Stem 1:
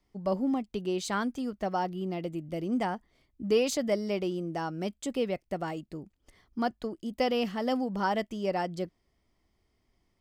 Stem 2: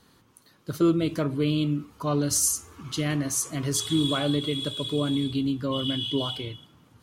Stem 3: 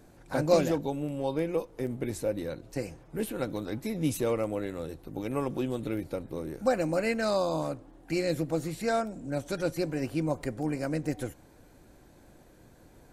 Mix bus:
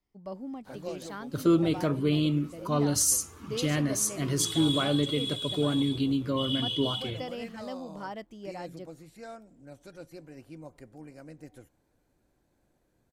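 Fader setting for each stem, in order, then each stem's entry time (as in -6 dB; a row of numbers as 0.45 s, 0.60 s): -10.5 dB, -1.0 dB, -16.0 dB; 0.00 s, 0.65 s, 0.35 s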